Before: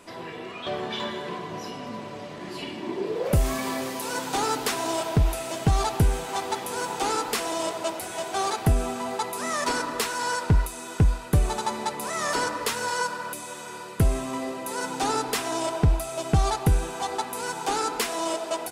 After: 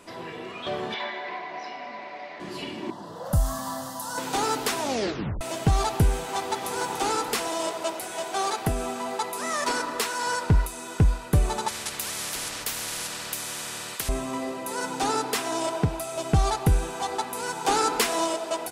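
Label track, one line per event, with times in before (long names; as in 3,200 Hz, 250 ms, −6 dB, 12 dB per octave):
0.940000	2.400000	loudspeaker in its box 460–4,800 Hz, peaks and dips at 470 Hz −8 dB, 730 Hz +7 dB, 1,200 Hz −4 dB, 2,100 Hz +10 dB, 3,100 Hz −6 dB
2.900000	4.180000	phaser with its sweep stopped centre 980 Hz, stages 4
4.790000	4.790000	tape stop 0.62 s
6.310000	6.800000	delay throw 290 ms, feedback 60%, level −8.5 dB
7.480000	10.270000	parametric band 65 Hz −9.5 dB 2.4 octaves
11.680000	14.090000	every bin compressed towards the loudest bin 10 to 1
15.100000	16.160000	high-pass filter 120 Hz
17.650000	18.260000	clip gain +3.5 dB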